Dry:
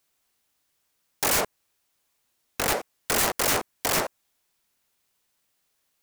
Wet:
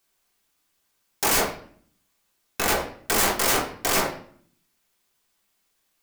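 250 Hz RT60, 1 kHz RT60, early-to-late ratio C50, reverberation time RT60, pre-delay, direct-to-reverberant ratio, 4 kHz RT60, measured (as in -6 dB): 0.85 s, 0.50 s, 9.0 dB, 0.55 s, 3 ms, 0.5 dB, 0.45 s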